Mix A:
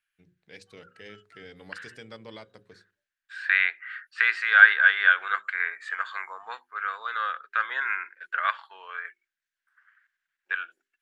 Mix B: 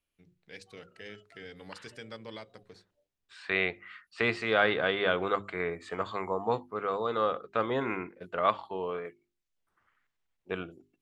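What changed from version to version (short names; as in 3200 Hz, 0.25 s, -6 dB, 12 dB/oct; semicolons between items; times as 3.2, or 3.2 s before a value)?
second voice: remove resonant high-pass 1600 Hz, resonance Q 7.7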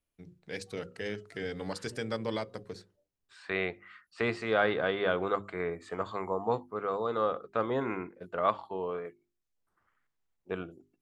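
first voice +11.0 dB; master: add bell 2800 Hz -6.5 dB 1.7 oct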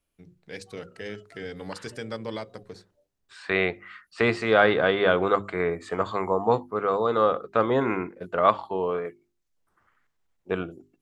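second voice +8.0 dB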